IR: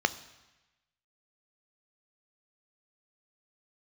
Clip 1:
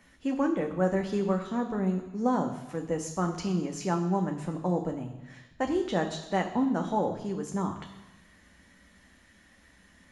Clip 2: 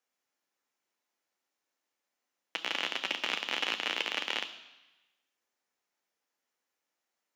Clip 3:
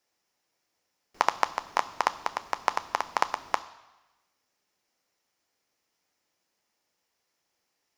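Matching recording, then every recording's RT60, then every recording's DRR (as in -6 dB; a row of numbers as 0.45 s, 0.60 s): 3; 1.1 s, 1.1 s, 1.1 s; 3.0 dB, 7.5 dB, 12.5 dB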